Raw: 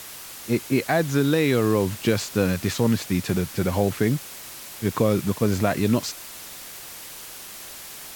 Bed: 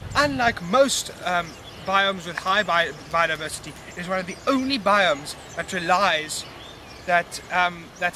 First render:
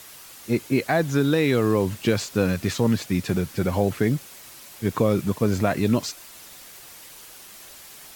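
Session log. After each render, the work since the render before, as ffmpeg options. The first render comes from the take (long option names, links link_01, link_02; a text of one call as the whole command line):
ffmpeg -i in.wav -af "afftdn=noise_reduction=6:noise_floor=-40" out.wav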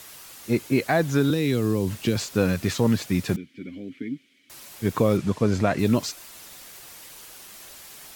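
ffmpeg -i in.wav -filter_complex "[0:a]asettb=1/sr,asplit=3[link_01][link_02][link_03];[link_01]atrim=end=1.304[link_04];[link_02]atrim=start=1.3:end=2.16,asetpts=PTS-STARTPTS,afade=type=in:duration=0.004:curve=qsin,afade=type=out:start_time=0.856:duration=0.004:curve=qsin,acrossover=split=380|3000[link_05][link_06][link_07];[link_06]acompressor=threshold=-33dB:ratio=6:attack=3.2:release=140:knee=2.83:detection=peak[link_08];[link_05][link_08][link_07]amix=inputs=3:normalize=0[link_09];[link_03]atrim=start=2.156[link_10];[link_04][link_09]acrossfade=duration=0.004:curve1=hsin:curve2=qsin[link_11];[link_11][link_10]acrossfade=duration=0.004:curve1=qsin:curve2=hsin,asettb=1/sr,asplit=3[link_12][link_13][link_14];[link_12]atrim=end=3.364[link_15];[link_13]atrim=start=3.36:end=4.5,asetpts=PTS-STARTPTS,afade=type=in:duration=0.004:curve=qsin,afade=type=out:start_time=1.136:duration=0.004:curve=qsin,asplit=3[link_16][link_17][link_18];[link_16]bandpass=frequency=270:width_type=q:width=8,volume=0dB[link_19];[link_17]bandpass=frequency=2290:width_type=q:width=8,volume=-6dB[link_20];[link_18]bandpass=frequency=3010:width_type=q:width=8,volume=-9dB[link_21];[link_19][link_20][link_21]amix=inputs=3:normalize=0[link_22];[link_14]atrim=start=4.496[link_23];[link_15][link_22]acrossfade=duration=0.004:curve1=hsin:curve2=qsin[link_24];[link_24][link_23]acrossfade=duration=0.004:curve1=qsin:curve2=hsin,asettb=1/sr,asplit=3[link_25][link_26][link_27];[link_25]atrim=end=5.174[link_28];[link_26]atrim=start=5.17:end=5.79,asetpts=PTS-STARTPTS,afade=type=in:duration=0.004:curve=qsin,afade=type=out:start_time=0.616:duration=0.004:curve=qsin,lowpass=7400[link_29];[link_27]atrim=start=5.786[link_30];[link_28][link_29]acrossfade=duration=0.004:curve1=hsin:curve2=qsin[link_31];[link_31][link_30]acrossfade=duration=0.004:curve1=qsin:curve2=hsin" out.wav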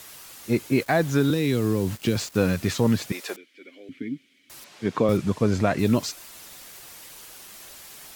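ffmpeg -i in.wav -filter_complex "[0:a]asettb=1/sr,asplit=3[link_01][link_02][link_03];[link_01]atrim=end=0.804[link_04];[link_02]atrim=start=0.8:end=2.55,asetpts=PTS-STARTPTS,afade=type=in:duration=0.004:curve=qsin,afade=type=out:start_time=1.746:duration=0.004:curve=qsin,aeval=exprs='val(0)*gte(abs(val(0)),0.0133)':channel_layout=same[link_05];[link_03]atrim=start=2.546[link_06];[link_04][link_05]acrossfade=duration=0.004:curve1=hsin:curve2=qsin[link_07];[link_07][link_06]acrossfade=duration=0.004:curve1=qsin:curve2=hsin,asettb=1/sr,asplit=3[link_08][link_09][link_10];[link_08]atrim=end=3.124[link_11];[link_09]atrim=start=3.12:end=3.89,asetpts=PTS-STARTPTS,afade=type=in:duration=0.004:curve=qsin,afade=type=out:start_time=0.766:duration=0.004:curve=qsin,highpass=frequency=420:width=0.5412,highpass=frequency=420:width=1.3066[link_12];[link_10]atrim=start=3.886[link_13];[link_11][link_12]acrossfade=duration=0.004:curve1=hsin:curve2=qsin[link_14];[link_14][link_13]acrossfade=duration=0.004:curve1=qsin:curve2=hsin,asettb=1/sr,asplit=3[link_15][link_16][link_17];[link_15]atrim=end=4.644[link_18];[link_16]atrim=start=4.64:end=5.09,asetpts=PTS-STARTPTS,afade=type=in:duration=0.004:curve=qsin,afade=type=out:start_time=0.446:duration=0.004:curve=qsin,highpass=160,lowpass=5000[link_19];[link_17]atrim=start=5.086[link_20];[link_18][link_19]acrossfade=duration=0.004:curve1=hsin:curve2=qsin[link_21];[link_21][link_20]acrossfade=duration=0.004:curve1=qsin:curve2=hsin" out.wav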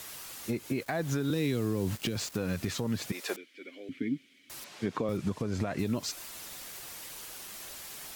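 ffmpeg -i in.wav -af "acompressor=threshold=-23dB:ratio=6,alimiter=limit=-20.5dB:level=0:latency=1:release=258" out.wav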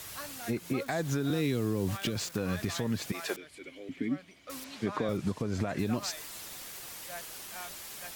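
ffmpeg -i in.wav -i bed.wav -filter_complex "[1:a]volume=-24.5dB[link_01];[0:a][link_01]amix=inputs=2:normalize=0" out.wav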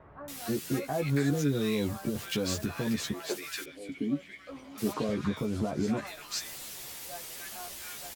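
ffmpeg -i in.wav -filter_complex "[0:a]asplit=2[link_01][link_02];[link_02]adelay=14,volume=-4dB[link_03];[link_01][link_03]amix=inputs=2:normalize=0,acrossover=split=1300[link_04][link_05];[link_05]adelay=280[link_06];[link_04][link_06]amix=inputs=2:normalize=0" out.wav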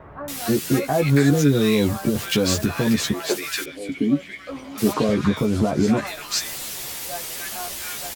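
ffmpeg -i in.wav -af "volume=11dB" out.wav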